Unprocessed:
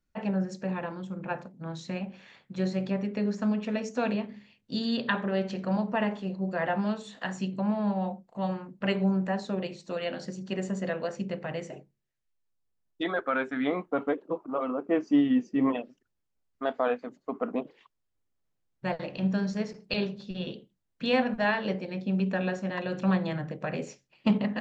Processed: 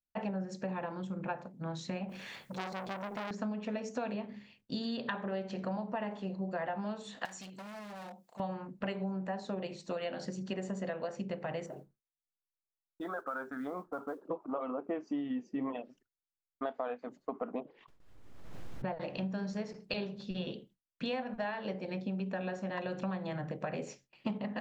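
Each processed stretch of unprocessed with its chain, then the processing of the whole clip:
0:02.09–0:03.31: mu-law and A-law mismatch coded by mu + high-shelf EQ 5,800 Hz +6 dB + saturating transformer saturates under 2,500 Hz
0:07.25–0:08.40: gain into a clipping stage and back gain 31 dB + spectral tilt +3.5 dB per octave + downward compressor 1.5 to 1, threshold −56 dBFS
0:11.66–0:14.25: high shelf with overshoot 1,800 Hz −8 dB, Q 3 + downward compressor 2 to 1, threshold −44 dBFS + noise that follows the level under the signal 32 dB
0:17.60–0:19.01: low-pass filter 1,700 Hz 6 dB per octave + background raised ahead of every attack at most 32 dB per second
whole clip: noise gate with hold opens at −53 dBFS; dynamic equaliser 770 Hz, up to +5 dB, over −44 dBFS, Q 1.2; downward compressor 6 to 1, threshold −34 dBFS

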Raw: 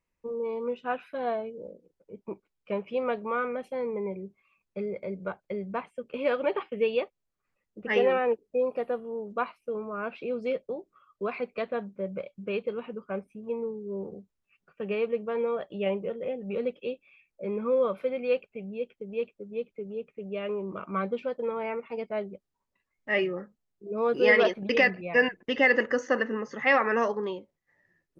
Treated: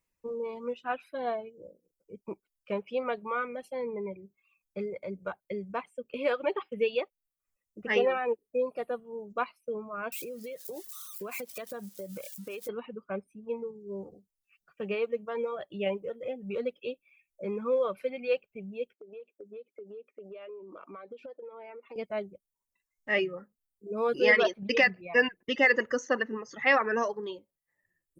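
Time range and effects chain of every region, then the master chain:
0:10.12–0:12.69: spike at every zero crossing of −36 dBFS + downward compressor 12 to 1, threshold −33 dBFS
0:18.93–0:21.96: high-pass filter 300 Hz 24 dB per octave + tilt shelving filter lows +6 dB, about 630 Hz + downward compressor 12 to 1, threshold −38 dBFS
whole clip: reverb reduction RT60 1.6 s; high-shelf EQ 5,200 Hz +10.5 dB; level −1.5 dB

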